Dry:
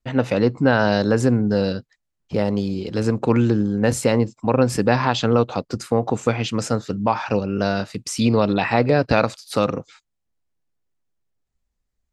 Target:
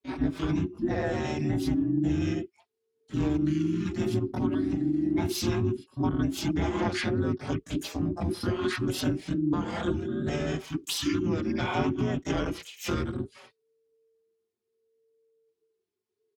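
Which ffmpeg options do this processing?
-filter_complex "[0:a]asetrate=32667,aresample=44100,dynaudnorm=f=340:g=13:m=11.5dB,asplit=3[a][b][c];[b]asetrate=37084,aresample=44100,atempo=1.18921,volume=-3dB[d];[c]asetrate=88200,aresample=44100,atempo=0.5,volume=-4dB[e];[a][d][e]amix=inputs=3:normalize=0,afreqshift=-450,highpass=67,acompressor=threshold=-16dB:ratio=6,asplit=2[f][g];[g]adelay=4.9,afreqshift=0.67[h];[f][h]amix=inputs=2:normalize=1,volume=-5dB"

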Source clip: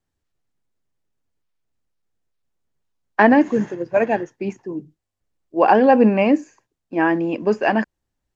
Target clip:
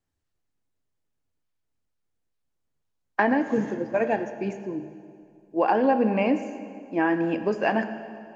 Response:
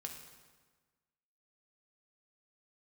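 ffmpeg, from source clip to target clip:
-filter_complex "[0:a]acompressor=threshold=-15dB:ratio=6,asplit=2[a][b];[1:a]atrim=start_sample=2205,asetrate=25578,aresample=44100[c];[b][c]afir=irnorm=-1:irlink=0,volume=-2dB[d];[a][d]amix=inputs=2:normalize=0,volume=-7.5dB"

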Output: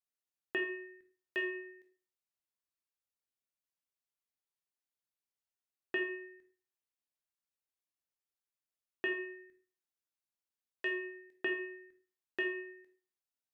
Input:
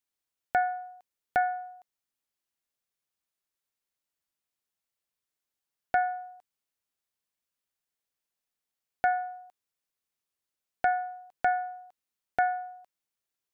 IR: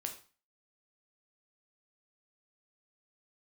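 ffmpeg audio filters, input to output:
-filter_complex "[0:a]aeval=exprs='val(0)*sin(2*PI*1100*n/s)':c=same[a];[1:a]atrim=start_sample=2205,asetrate=42777,aresample=44100[b];[a][b]afir=irnorm=-1:irlink=0,volume=-5.5dB"

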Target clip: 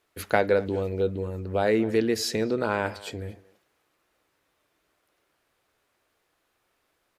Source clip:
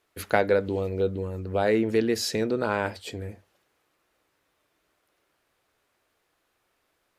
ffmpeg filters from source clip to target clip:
-filter_complex "[0:a]asplit=2[a][b];[b]adelay=230,highpass=300,lowpass=3.4k,asoftclip=type=hard:threshold=-13.5dB,volume=-19dB[c];[a][c]amix=inputs=2:normalize=0"

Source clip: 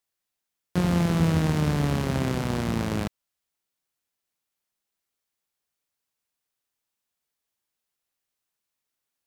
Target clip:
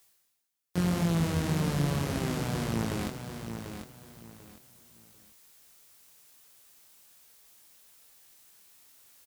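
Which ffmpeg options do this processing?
-af "highshelf=f=5.3k:g=7.5,areverse,acompressor=mode=upward:threshold=-32dB:ratio=2.5,areverse,flanger=delay=17.5:depth=5.7:speed=1.8,aecho=1:1:742|1484|2226:0.398|0.104|0.0269,volume=-2.5dB"

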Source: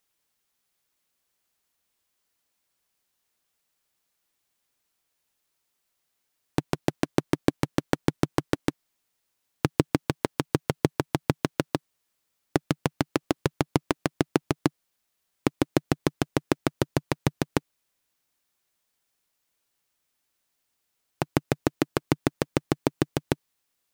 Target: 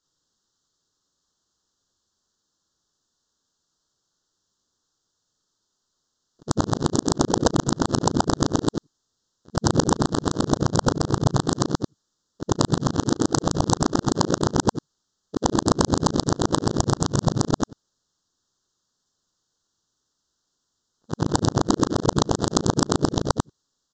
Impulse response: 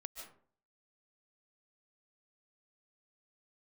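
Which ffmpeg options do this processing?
-filter_complex "[0:a]afftfilt=real='re':imag='-im':win_size=8192:overlap=0.75,equalizer=f=710:t=o:w=0.81:g=-10.5,asplit=4[a][b][c][d];[b]asetrate=33038,aresample=44100,atempo=1.33484,volume=-8dB[e];[c]asetrate=52444,aresample=44100,atempo=0.840896,volume=-10dB[f];[d]asetrate=66075,aresample=44100,atempo=0.66742,volume=-12dB[g];[a][e][f][g]amix=inputs=4:normalize=0,acontrast=74,aresample=16000,aeval=exprs='(mod(3.55*val(0)+1,2)-1)/3.55':c=same,aresample=44100,asuperstop=centerf=2300:order=4:qfactor=0.99,volume=4.5dB"

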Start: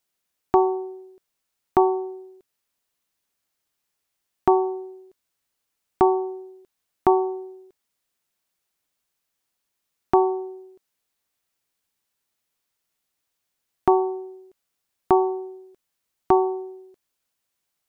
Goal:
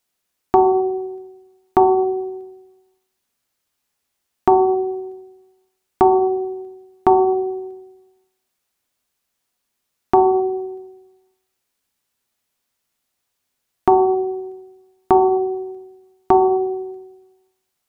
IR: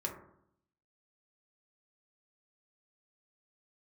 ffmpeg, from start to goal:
-filter_complex "[0:a]asplit=2[a][b];[1:a]atrim=start_sample=2205,asetrate=29106,aresample=44100[c];[b][c]afir=irnorm=-1:irlink=0,volume=-6dB[d];[a][d]amix=inputs=2:normalize=0"

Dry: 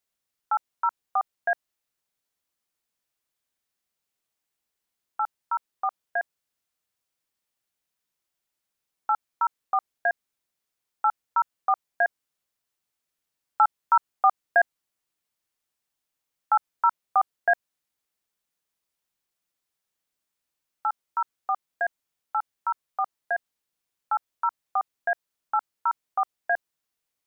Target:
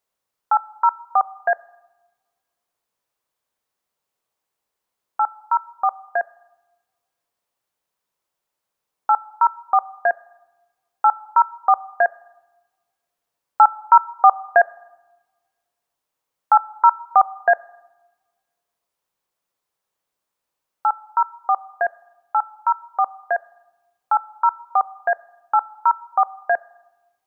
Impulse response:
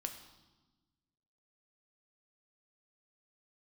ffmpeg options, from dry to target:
-filter_complex "[0:a]equalizer=f=125:t=o:w=1:g=3,equalizer=f=500:t=o:w=1:g=7,equalizer=f=1k:t=o:w=1:g=8,asplit=2[a][b];[1:a]atrim=start_sample=2205[c];[b][c]afir=irnorm=-1:irlink=0,volume=-10dB[d];[a][d]amix=inputs=2:normalize=0,volume=-1.5dB"

